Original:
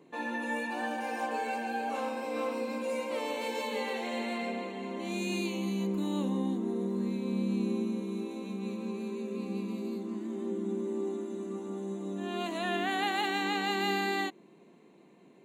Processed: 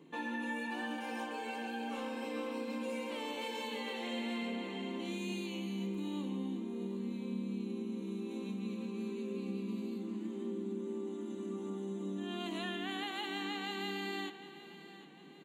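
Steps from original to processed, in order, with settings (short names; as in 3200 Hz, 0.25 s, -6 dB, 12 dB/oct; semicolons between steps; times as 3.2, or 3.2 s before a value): thirty-one-band EQ 160 Hz +8 dB, 315 Hz +4 dB, 630 Hz -7 dB, 3150 Hz +8 dB; compressor, threshold -35 dBFS, peak gain reduction 10 dB; feedback echo 0.754 s, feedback 47%, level -15 dB; on a send at -10 dB: reverb RT60 1.9 s, pre-delay 3 ms; on the sum: gain -2 dB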